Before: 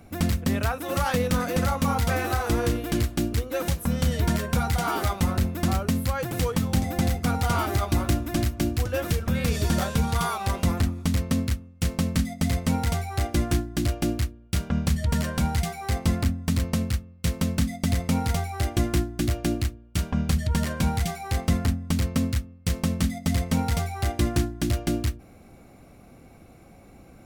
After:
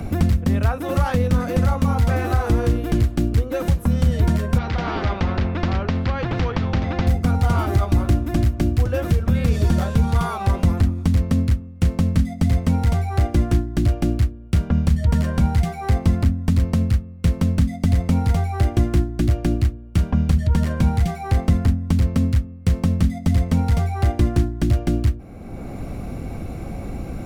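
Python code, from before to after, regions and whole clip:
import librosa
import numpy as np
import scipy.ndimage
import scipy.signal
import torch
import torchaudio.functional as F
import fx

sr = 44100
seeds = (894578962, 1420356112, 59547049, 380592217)

y = fx.chain(x, sr, fx.gaussian_blur(sigma=2.4),
    fx.spectral_comp(ratio=2.0), at=(4.58, 7.07))
y = fx.tilt_eq(y, sr, slope=-2.0)
y = fx.band_squash(y, sr, depth_pct=70)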